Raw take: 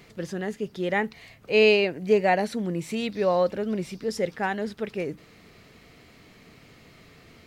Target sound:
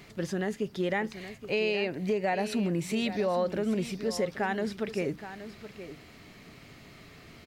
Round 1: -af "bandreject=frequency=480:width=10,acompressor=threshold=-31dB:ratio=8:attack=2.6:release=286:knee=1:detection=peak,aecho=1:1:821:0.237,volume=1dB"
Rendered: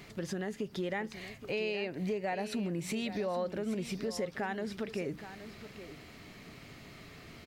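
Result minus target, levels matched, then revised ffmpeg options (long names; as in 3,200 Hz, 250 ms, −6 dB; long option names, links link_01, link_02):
downward compressor: peak gain reduction +6 dB
-af "bandreject=frequency=480:width=10,acompressor=threshold=-24dB:ratio=8:attack=2.6:release=286:knee=1:detection=peak,aecho=1:1:821:0.237,volume=1dB"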